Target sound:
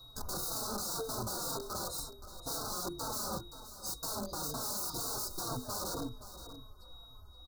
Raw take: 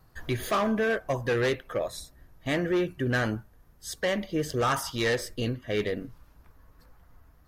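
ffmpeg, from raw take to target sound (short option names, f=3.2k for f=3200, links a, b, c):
-filter_complex "[0:a]equalizer=f=180:w=2.5:g=-10.5,bandreject=f=50:t=h:w=6,bandreject=f=100:t=h:w=6,bandreject=f=150:t=h:w=6,bandreject=f=200:t=h:w=6,bandreject=f=250:t=h:w=6,bandreject=f=300:t=h:w=6,bandreject=f=350:t=h:w=6,bandreject=f=400:t=h:w=6,bandreject=f=450:t=h:w=6,asplit=2[a][b];[b]alimiter=level_in=4.5dB:limit=-24dB:level=0:latency=1:release=17,volume=-4.5dB,volume=-2.5dB[c];[a][c]amix=inputs=2:normalize=0,aeval=exprs='(mod(26.6*val(0)+1,2)-1)/26.6':c=same,aeval=exprs='val(0)+0.00708*sin(2*PI*3800*n/s)':c=same,asuperstop=centerf=2400:order=12:qfactor=0.9,asplit=2[d][e];[e]aecho=0:1:523:0.224[f];[d][f]amix=inputs=2:normalize=0,asplit=2[g][h];[h]adelay=3.9,afreqshift=-2[i];[g][i]amix=inputs=2:normalize=1"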